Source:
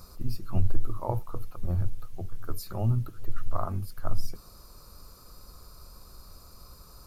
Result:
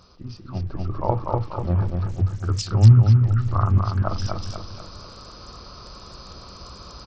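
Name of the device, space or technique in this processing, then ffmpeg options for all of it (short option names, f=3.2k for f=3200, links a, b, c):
Bluetooth headset: -filter_complex "[0:a]asettb=1/sr,asplit=3[a][b][c];[a]atrim=end=2.094[d];[b]atrim=start=2.09:end=3.78,asetpts=PTS-STARTPTS,afade=t=in:d=0.004:c=qsin,afade=t=out:st=1.686:d=0.004:c=qsin,equalizer=f=100:t=o:w=0.67:g=11,equalizer=f=630:t=o:w=0.67:g=-10,equalizer=f=2.5k:t=o:w=0.67:g=-3,equalizer=f=6.3k:t=o:w=0.67:g=8[e];[c]atrim=start=3.776[f];[d][e]acrossfade=d=0.004:c1=hsin:c2=qsin[g];[g][f]acrossfade=d=0.004:c1=qsin:c2=hsin,highpass=f=100:p=1,aecho=1:1:243|486|729|972|1215:0.596|0.256|0.11|0.0474|0.0204,dynaudnorm=f=630:g=3:m=12dB,aresample=16000,aresample=44100" -ar 44100 -c:a sbc -b:a 64k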